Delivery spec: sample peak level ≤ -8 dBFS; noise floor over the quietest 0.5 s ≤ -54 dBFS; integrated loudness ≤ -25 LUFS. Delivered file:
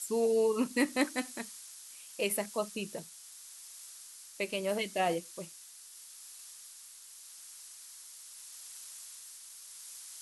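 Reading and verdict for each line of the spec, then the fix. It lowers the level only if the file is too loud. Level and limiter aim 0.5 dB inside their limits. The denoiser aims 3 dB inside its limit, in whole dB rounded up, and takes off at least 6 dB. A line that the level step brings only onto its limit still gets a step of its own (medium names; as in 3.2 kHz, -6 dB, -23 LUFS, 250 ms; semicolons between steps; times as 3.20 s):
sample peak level -14.5 dBFS: pass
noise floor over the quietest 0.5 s -52 dBFS: fail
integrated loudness -34.5 LUFS: pass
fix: noise reduction 6 dB, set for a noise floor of -52 dBFS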